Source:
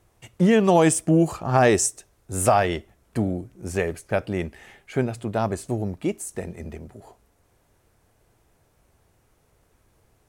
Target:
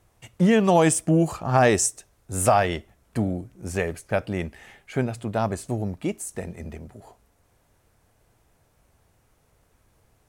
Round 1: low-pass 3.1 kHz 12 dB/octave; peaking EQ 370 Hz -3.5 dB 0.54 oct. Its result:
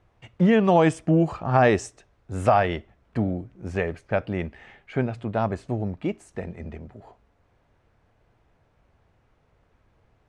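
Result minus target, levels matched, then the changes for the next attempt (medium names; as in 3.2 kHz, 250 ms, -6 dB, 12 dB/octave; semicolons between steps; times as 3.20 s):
4 kHz band -4.0 dB
remove: low-pass 3.1 kHz 12 dB/octave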